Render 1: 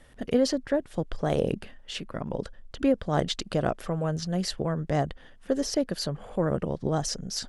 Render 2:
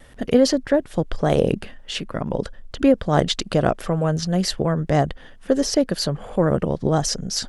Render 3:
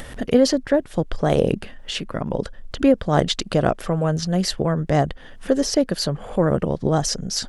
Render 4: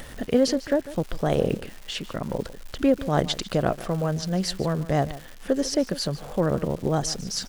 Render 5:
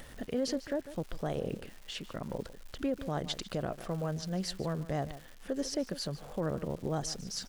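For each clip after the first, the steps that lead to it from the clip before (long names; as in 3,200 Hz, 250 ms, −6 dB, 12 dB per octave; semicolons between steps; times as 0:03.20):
pitch vibrato 0.49 Hz 6.8 cents; level +7.5 dB
upward compression, threshold −25 dBFS
single-tap delay 148 ms −16.5 dB; surface crackle 400 per second −30 dBFS; level −4.5 dB
brickwall limiter −14.5 dBFS, peak gain reduction 8 dB; level −9 dB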